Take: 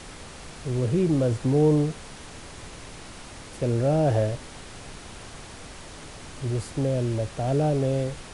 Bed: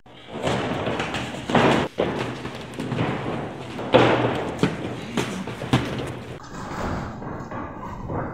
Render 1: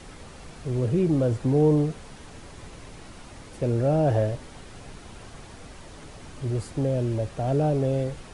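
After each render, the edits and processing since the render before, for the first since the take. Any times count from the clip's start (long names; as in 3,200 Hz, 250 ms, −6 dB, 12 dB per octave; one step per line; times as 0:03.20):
broadband denoise 6 dB, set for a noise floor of −43 dBFS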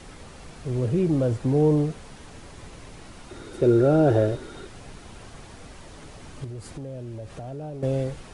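0:03.30–0:04.67: hollow resonant body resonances 370/1,400/3,700 Hz, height 14 dB, ringing for 35 ms
0:06.44–0:07.83: downward compressor 4 to 1, threshold −34 dBFS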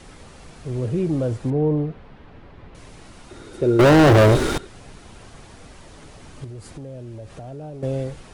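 0:01.50–0:02.75: high-frequency loss of the air 360 metres
0:03.79–0:04.58: leveller curve on the samples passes 5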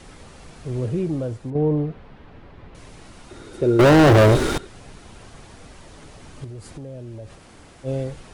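0:00.82–0:01.55: fade out, to −8.5 dB
0:07.37–0:07.86: fill with room tone, crossfade 0.06 s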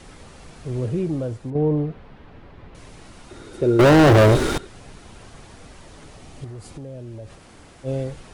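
0:06.23–0:06.73: healed spectral selection 650–2,100 Hz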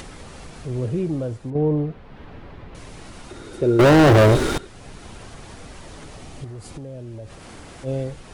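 upward compression, threshold −32 dBFS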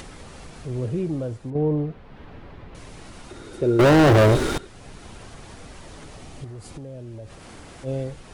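level −2 dB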